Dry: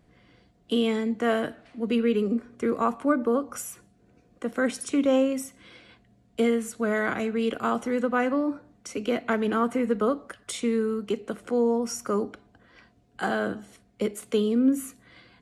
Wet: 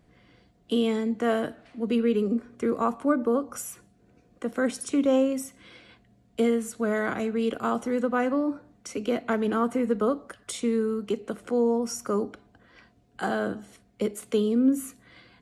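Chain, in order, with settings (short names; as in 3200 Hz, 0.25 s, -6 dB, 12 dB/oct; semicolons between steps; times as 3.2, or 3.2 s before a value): dynamic EQ 2200 Hz, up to -4 dB, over -44 dBFS, Q 0.96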